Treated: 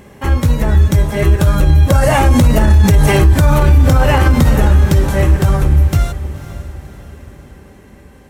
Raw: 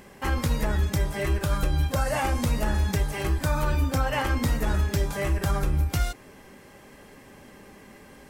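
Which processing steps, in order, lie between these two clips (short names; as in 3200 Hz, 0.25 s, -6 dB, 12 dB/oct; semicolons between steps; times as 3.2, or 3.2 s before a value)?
Doppler pass-by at 3.14, 6 m/s, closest 1.5 m; bell 450 Hz +3 dB 1.9 oct; diffused feedback echo 0.53 s, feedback 44%, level -14.5 dB; compressor 6:1, threshold -32 dBFS, peak gain reduction 11.5 dB; bell 91 Hz +10 dB 2 oct; notch 4900 Hz, Q 13; maximiser +27.5 dB; gain -1 dB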